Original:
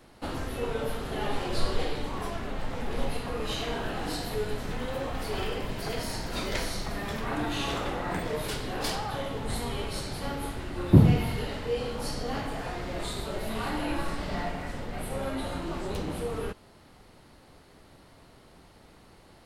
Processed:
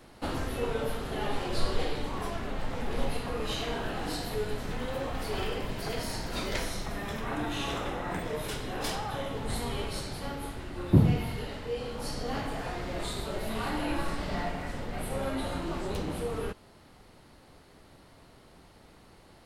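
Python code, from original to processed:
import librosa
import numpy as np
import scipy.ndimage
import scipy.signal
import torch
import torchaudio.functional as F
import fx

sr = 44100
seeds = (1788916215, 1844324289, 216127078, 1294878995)

y = fx.notch(x, sr, hz=4500.0, q=9.5, at=(6.58, 9.35))
y = fx.rider(y, sr, range_db=10, speed_s=2.0)
y = F.gain(torch.from_numpy(y), -3.0).numpy()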